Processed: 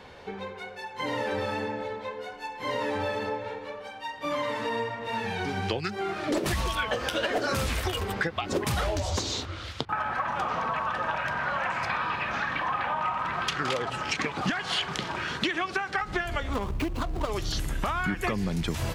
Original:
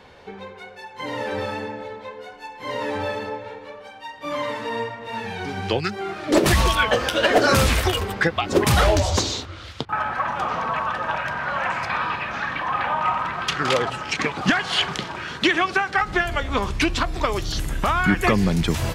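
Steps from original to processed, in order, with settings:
0:16.53–0:17.31: running median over 25 samples
downward compressor 5 to 1, threshold −26 dBFS, peak gain reduction 12.5 dB

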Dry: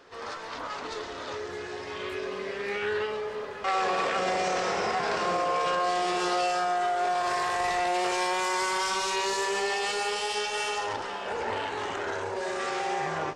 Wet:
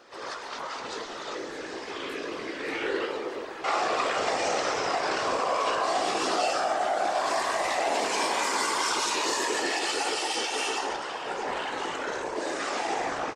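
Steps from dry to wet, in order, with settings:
bass and treble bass −9 dB, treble +4 dB
random phases in short frames
double-tracking delay 18 ms −11 dB

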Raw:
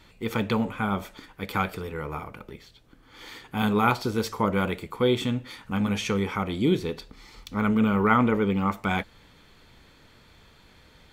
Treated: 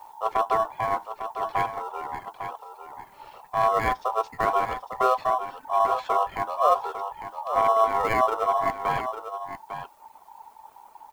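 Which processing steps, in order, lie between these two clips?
high-shelf EQ 8,200 Hz −11 dB
healed spectral selection 0:05.19–0:05.79, 520–1,400 Hz before
RIAA equalisation playback
background noise blue −56 dBFS
reverb reduction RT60 1.6 s
in parallel at −10 dB: decimation without filtering 19×
on the sum: ring modulation 890 Hz
single-tap delay 851 ms −9.5 dB
level −3.5 dB

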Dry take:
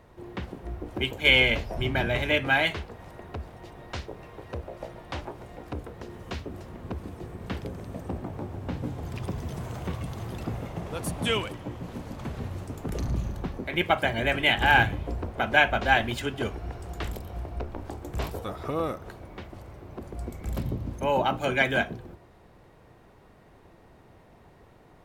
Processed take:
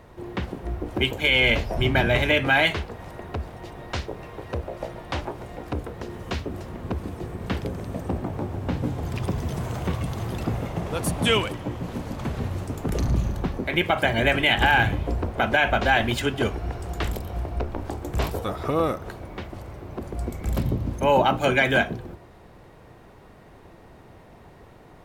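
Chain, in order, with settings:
boost into a limiter +14 dB
level −8 dB

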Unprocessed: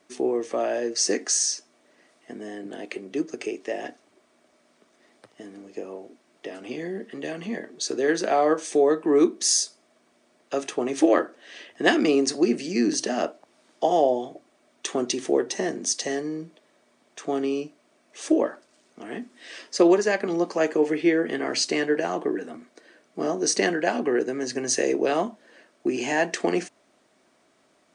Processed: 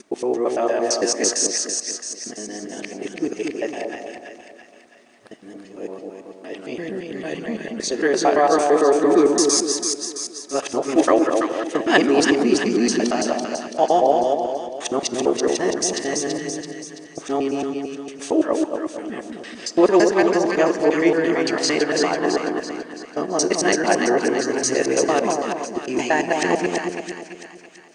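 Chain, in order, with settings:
reversed piece by piece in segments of 113 ms
echo with a time of its own for lows and highs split 1,000 Hz, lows 227 ms, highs 333 ms, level −4 dB
on a send at −17 dB: convolution reverb RT60 1.2 s, pre-delay 14 ms
on the sum: dynamic equaliser 1,000 Hz, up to +5 dB, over −37 dBFS, Q 1.5
level +2.5 dB

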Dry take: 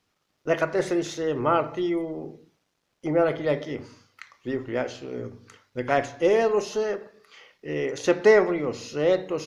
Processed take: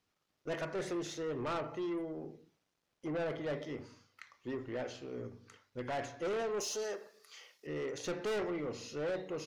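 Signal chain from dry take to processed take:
0:06.60–0:07.67: bass and treble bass −13 dB, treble +14 dB
soft clipping −24.5 dBFS, distortion −6 dB
level −8 dB

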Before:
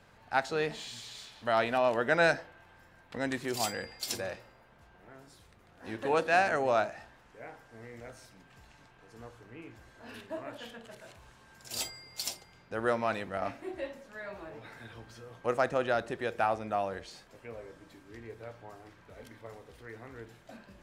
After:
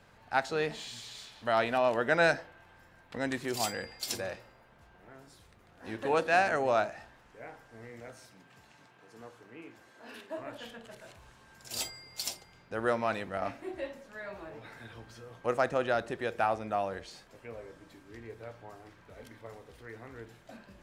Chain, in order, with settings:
0:07.89–0:10.37: high-pass filter 88 Hz → 270 Hz 12 dB per octave

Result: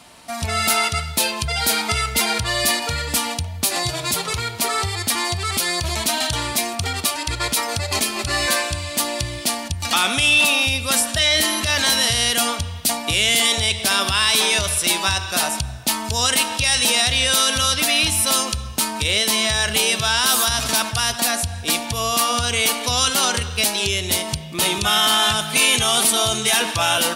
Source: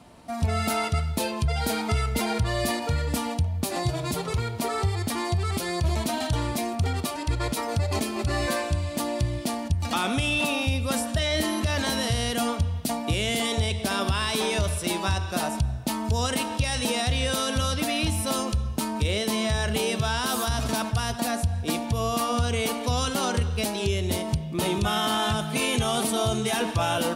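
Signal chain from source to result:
tilt shelving filter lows −8 dB
level +5.5 dB

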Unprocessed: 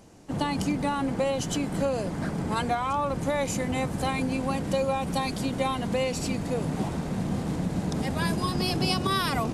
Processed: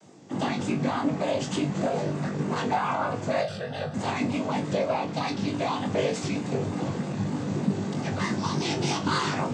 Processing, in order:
stylus tracing distortion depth 0.18 ms
0:04.74–0:05.47: Chebyshev low-pass filter 4,700 Hz, order 2
in parallel at −0.5 dB: brickwall limiter −20.5 dBFS, peak gain reduction 7 dB
on the sum: cochlear-implant simulation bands 16
0:03.41–0:03.94: phaser with its sweep stopped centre 1,500 Hz, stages 8
pitch vibrato 3.3 Hz 65 cents
flutter between parallel walls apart 3.5 metres, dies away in 0.21 s
level −5.5 dB

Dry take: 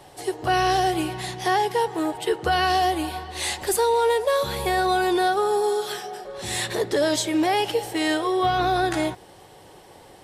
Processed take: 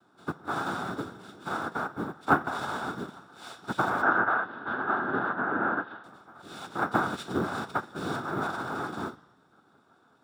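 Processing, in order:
parametric band 860 Hz −12.5 dB 1.8 octaves
tuned comb filter 220 Hz, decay 0.33 s, harmonics all, mix 80%
cochlear-implant simulation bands 3
floating-point word with a short mantissa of 2 bits
0:04.02–0:06.04: loudspeaker in its box 130–2,900 Hz, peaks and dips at 160 Hz −8 dB, 1,600 Hz +8 dB, 2,300 Hz −7 dB
convolution reverb RT60 1.1 s, pre-delay 3 ms, DRR 14.5 dB
expander for the loud parts 1.5 to 1, over −44 dBFS
level +6 dB

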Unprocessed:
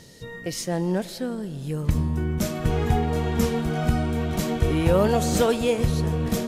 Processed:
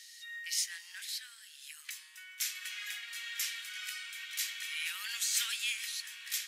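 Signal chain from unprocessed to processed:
Butterworth high-pass 1,800 Hz 36 dB per octave

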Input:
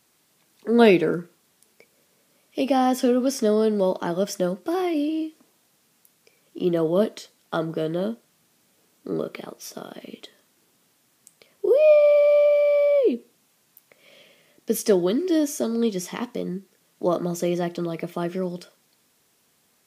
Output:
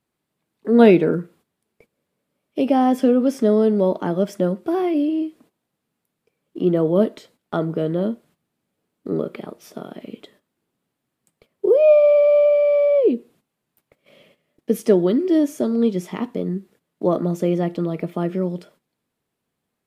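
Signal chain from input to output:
parametric band 5,900 Hz −6 dB 0.69 octaves
noise gate −54 dBFS, range −13 dB
spectral tilt −2 dB per octave
level +1 dB

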